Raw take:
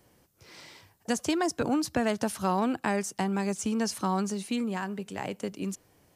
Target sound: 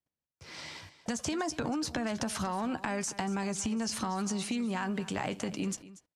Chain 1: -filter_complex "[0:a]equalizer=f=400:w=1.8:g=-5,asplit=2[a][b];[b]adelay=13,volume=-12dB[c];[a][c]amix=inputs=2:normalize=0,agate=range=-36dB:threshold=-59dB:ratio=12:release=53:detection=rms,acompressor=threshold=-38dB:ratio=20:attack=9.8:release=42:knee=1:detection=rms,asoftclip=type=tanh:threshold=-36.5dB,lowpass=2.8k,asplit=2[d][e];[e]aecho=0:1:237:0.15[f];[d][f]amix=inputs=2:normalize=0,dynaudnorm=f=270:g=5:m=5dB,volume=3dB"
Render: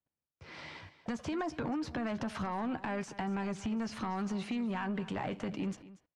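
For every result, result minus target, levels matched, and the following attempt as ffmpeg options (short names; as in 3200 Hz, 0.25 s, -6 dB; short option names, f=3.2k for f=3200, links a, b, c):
8000 Hz band -14.0 dB; soft clip: distortion +15 dB
-filter_complex "[0:a]equalizer=f=400:w=1.8:g=-5,asplit=2[a][b];[b]adelay=13,volume=-12dB[c];[a][c]amix=inputs=2:normalize=0,agate=range=-36dB:threshold=-59dB:ratio=12:release=53:detection=rms,acompressor=threshold=-38dB:ratio=20:attack=9.8:release=42:knee=1:detection=rms,asoftclip=type=tanh:threshold=-36.5dB,lowpass=7.9k,asplit=2[d][e];[e]aecho=0:1:237:0.15[f];[d][f]amix=inputs=2:normalize=0,dynaudnorm=f=270:g=5:m=5dB,volume=3dB"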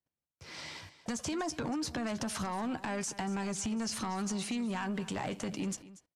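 soft clip: distortion +15 dB
-filter_complex "[0:a]equalizer=f=400:w=1.8:g=-5,asplit=2[a][b];[b]adelay=13,volume=-12dB[c];[a][c]amix=inputs=2:normalize=0,agate=range=-36dB:threshold=-59dB:ratio=12:release=53:detection=rms,acompressor=threshold=-38dB:ratio=20:attack=9.8:release=42:knee=1:detection=rms,asoftclip=type=tanh:threshold=-25.5dB,lowpass=7.9k,asplit=2[d][e];[e]aecho=0:1:237:0.15[f];[d][f]amix=inputs=2:normalize=0,dynaudnorm=f=270:g=5:m=5dB,volume=3dB"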